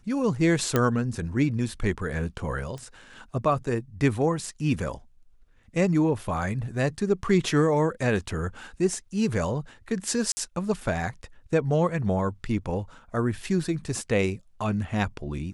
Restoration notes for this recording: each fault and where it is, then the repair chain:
0.76 s: pop -8 dBFS
2.78 s: pop -27 dBFS
10.32–10.37 s: dropout 50 ms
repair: de-click; interpolate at 10.32 s, 50 ms

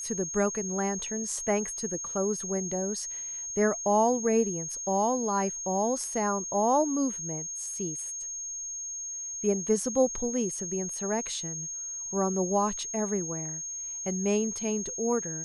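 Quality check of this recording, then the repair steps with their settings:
whine 6.5 kHz -34 dBFS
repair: band-stop 6.5 kHz, Q 30

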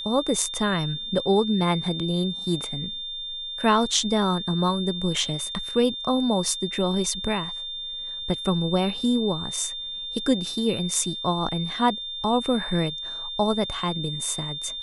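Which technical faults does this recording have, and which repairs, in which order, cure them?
whine 3.6 kHz -31 dBFS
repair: band-stop 3.6 kHz, Q 30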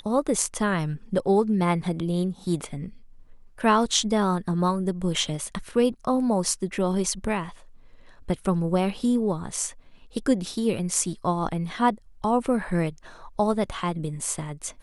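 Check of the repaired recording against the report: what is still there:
nothing left

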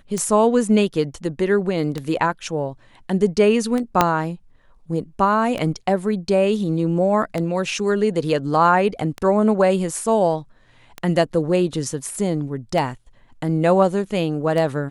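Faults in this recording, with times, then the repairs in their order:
tick 33 1/3 rpm -12 dBFS
4.01 s: pop 0 dBFS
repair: de-click

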